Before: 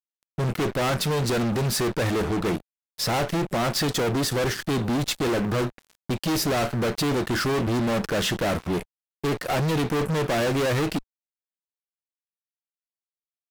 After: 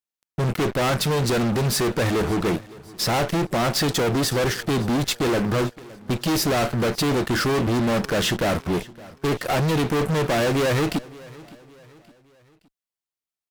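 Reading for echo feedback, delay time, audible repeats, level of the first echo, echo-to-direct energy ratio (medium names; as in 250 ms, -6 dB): 43%, 565 ms, 2, -21.0 dB, -20.0 dB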